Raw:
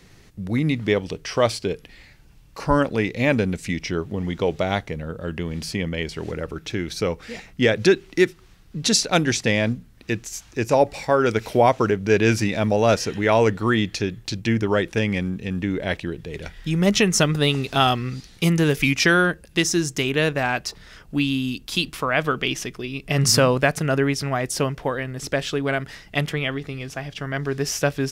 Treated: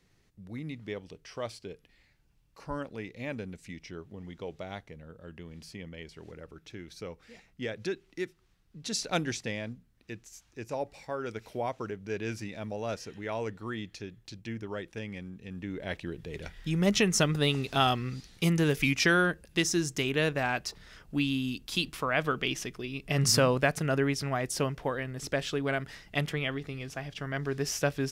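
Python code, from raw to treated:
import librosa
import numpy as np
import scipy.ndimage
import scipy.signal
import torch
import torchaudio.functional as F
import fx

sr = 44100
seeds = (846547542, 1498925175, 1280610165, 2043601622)

y = fx.gain(x, sr, db=fx.line((8.85, -17.5), (9.09, -9.5), (9.68, -17.0), (15.31, -17.0), (16.27, -7.0)))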